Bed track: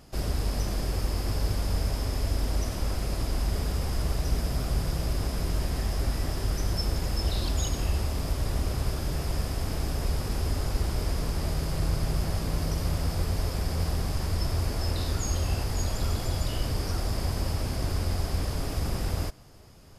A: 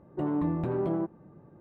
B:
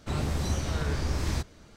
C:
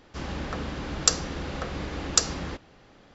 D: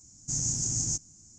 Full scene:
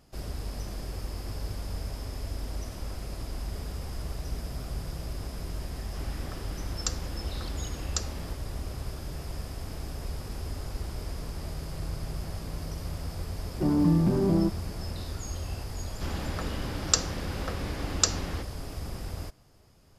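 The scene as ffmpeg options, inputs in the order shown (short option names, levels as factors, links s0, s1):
-filter_complex "[3:a]asplit=2[s0][s1];[0:a]volume=0.422[s2];[1:a]equalizer=f=200:t=o:w=0.79:g=14[s3];[s0]atrim=end=3.14,asetpts=PTS-STARTPTS,volume=0.282,afade=t=in:d=0.004:c=hsin,afade=t=out:st=3.136:d=0.004:c=hsin,adelay=5790[s4];[s3]atrim=end=1.6,asetpts=PTS-STARTPTS,volume=0.944,afade=t=in:d=0.004:c=hsin,afade=t=out:st=1.596:d=0.004:c=hsin,adelay=13430[s5];[s1]atrim=end=3.14,asetpts=PTS-STARTPTS,volume=0.75,afade=t=in:d=0.004:c=hsin,afade=t=out:st=3.136:d=0.004:c=hsin,adelay=15860[s6];[s2][s4][s5][s6]amix=inputs=4:normalize=0"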